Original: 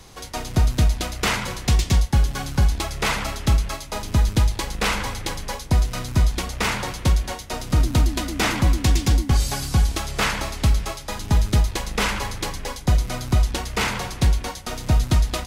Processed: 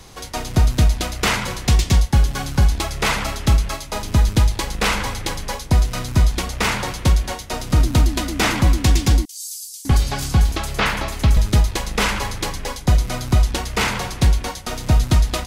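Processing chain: 9.25–11.37 s: bands offset in time highs, lows 600 ms, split 5.3 kHz; trim +3 dB

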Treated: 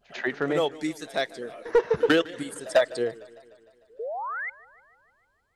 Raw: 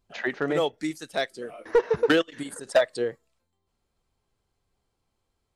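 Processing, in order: painted sound rise, 3.99–4.50 s, 420–2200 Hz -32 dBFS; pre-echo 96 ms -21.5 dB; modulated delay 151 ms, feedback 63%, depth 134 cents, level -21 dB

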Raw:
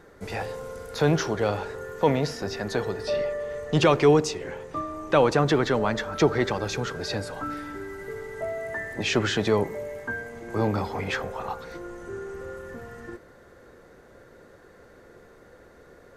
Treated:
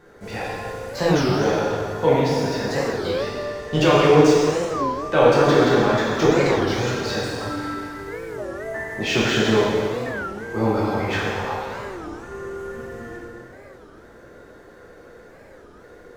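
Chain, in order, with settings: median filter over 3 samples; plate-style reverb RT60 2.1 s, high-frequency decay 0.9×, DRR -7.5 dB; warped record 33 1/3 rpm, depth 250 cents; trim -2.5 dB

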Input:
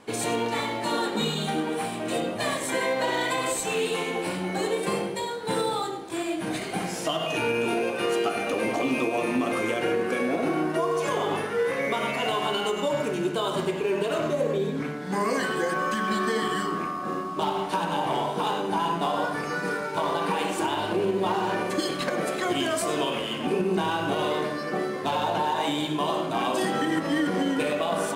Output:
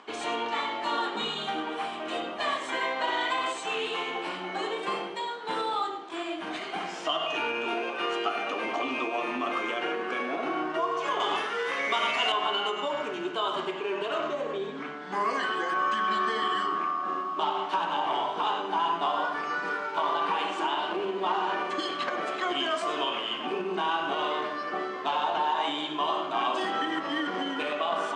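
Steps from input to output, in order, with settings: treble shelf 3.4 kHz -10.5 dB, from 11.20 s +2 dB, from 12.32 s -11 dB; upward compressor, threshold -47 dBFS; cabinet simulation 430–7300 Hz, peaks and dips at 510 Hz -9 dB, 1.2 kHz +5 dB, 3.1 kHz +7 dB

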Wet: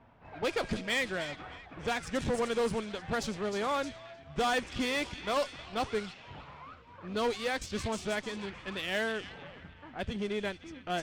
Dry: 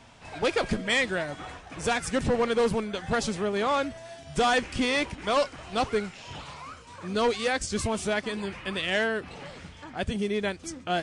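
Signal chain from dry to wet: feedback echo behind a high-pass 309 ms, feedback 59%, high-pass 3.1 kHz, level -6 dB; level-controlled noise filter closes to 1.4 kHz, open at -20.5 dBFS; Chebyshev shaper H 8 -25 dB, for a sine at -16 dBFS; trim -6 dB

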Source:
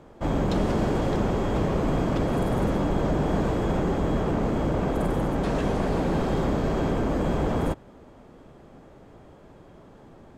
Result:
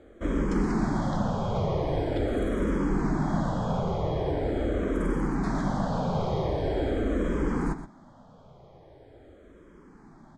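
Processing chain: low-pass 7.9 kHz 12 dB/octave; band-stop 2.7 kHz, Q 5.4; delay 122 ms -11.5 dB; barber-pole phaser -0.43 Hz

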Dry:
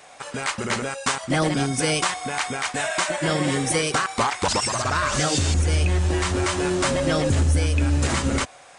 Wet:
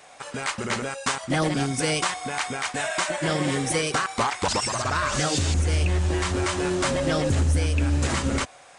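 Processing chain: loudspeaker Doppler distortion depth 0.14 ms; trim -2 dB

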